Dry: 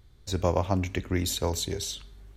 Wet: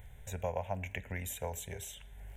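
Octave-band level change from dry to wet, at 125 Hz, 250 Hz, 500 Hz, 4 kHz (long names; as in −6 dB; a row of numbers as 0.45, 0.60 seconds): −11.5, −17.0, −10.0, −17.0 decibels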